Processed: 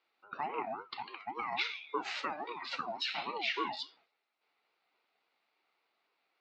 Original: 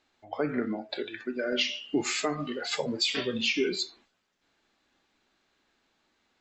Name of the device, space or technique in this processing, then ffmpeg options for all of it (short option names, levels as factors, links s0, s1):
voice changer toy: -af "aeval=exprs='val(0)*sin(2*PI*580*n/s+580*0.25/3.6*sin(2*PI*3.6*n/s))':c=same,highpass=560,equalizer=f=560:t=q:w=4:g=-4,equalizer=f=1000:t=q:w=4:g=-7,equalizer=f=1700:t=q:w=4:g=-9,equalizer=f=3200:t=q:w=4:g=-9,lowpass=f=3800:w=0.5412,lowpass=f=3800:w=1.3066,volume=1.26"